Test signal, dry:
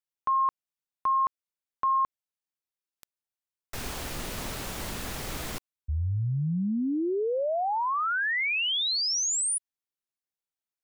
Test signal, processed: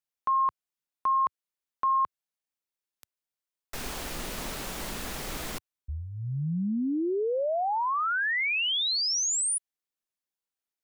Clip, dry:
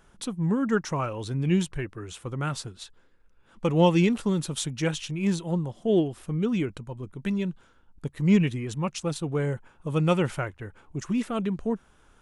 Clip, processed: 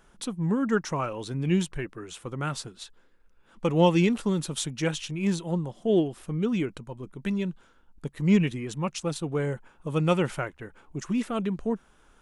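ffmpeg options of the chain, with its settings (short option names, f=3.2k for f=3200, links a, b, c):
-af "equalizer=f=95:w=2.5:g=-11.5"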